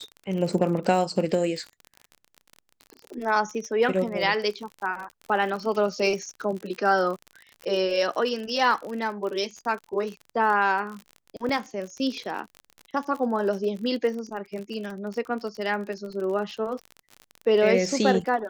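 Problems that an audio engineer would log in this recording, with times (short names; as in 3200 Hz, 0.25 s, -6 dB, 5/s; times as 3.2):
crackle 46/s -32 dBFS
11.49 gap 3.3 ms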